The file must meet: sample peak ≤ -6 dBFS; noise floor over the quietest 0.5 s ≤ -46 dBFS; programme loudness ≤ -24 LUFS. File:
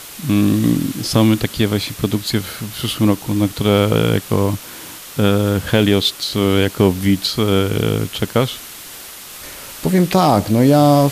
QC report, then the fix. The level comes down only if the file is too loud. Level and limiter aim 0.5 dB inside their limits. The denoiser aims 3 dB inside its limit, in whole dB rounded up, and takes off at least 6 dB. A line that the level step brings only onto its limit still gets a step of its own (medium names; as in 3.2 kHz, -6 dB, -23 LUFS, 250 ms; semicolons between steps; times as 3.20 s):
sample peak -2.5 dBFS: fail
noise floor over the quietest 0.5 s -35 dBFS: fail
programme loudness -16.5 LUFS: fail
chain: noise reduction 6 dB, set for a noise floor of -35 dBFS; trim -8 dB